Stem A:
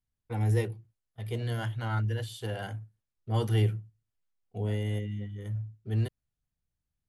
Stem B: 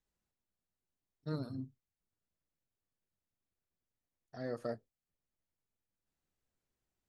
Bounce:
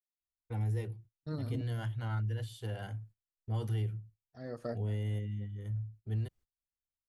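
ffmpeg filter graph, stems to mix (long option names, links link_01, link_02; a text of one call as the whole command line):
ffmpeg -i stem1.wav -i stem2.wav -filter_complex "[0:a]adelay=200,volume=-7.5dB[link_01];[1:a]aeval=exprs='val(0)*pow(10,-32*if(lt(mod(-0.62*n/s,1),2*abs(-0.62)/1000),1-mod(-0.62*n/s,1)/(2*abs(-0.62)/1000),(mod(-0.62*n/s,1)-2*abs(-0.62)/1000)/(1-2*abs(-0.62)/1000))/20)':channel_layout=same,volume=3dB[link_02];[link_01][link_02]amix=inputs=2:normalize=0,agate=range=-19dB:threshold=-58dB:ratio=16:detection=peak,lowshelf=frequency=120:gain=10,acompressor=threshold=-30dB:ratio=6" out.wav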